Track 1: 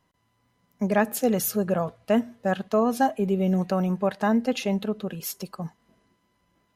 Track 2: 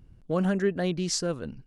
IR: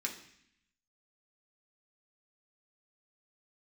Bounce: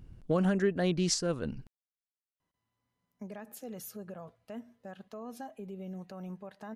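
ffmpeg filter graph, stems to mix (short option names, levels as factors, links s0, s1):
-filter_complex "[0:a]alimiter=limit=0.1:level=0:latency=1:release=119,adelay=2400,volume=0.188[s0];[1:a]volume=1.26[s1];[s0][s1]amix=inputs=2:normalize=0,alimiter=limit=0.126:level=0:latency=1:release=400"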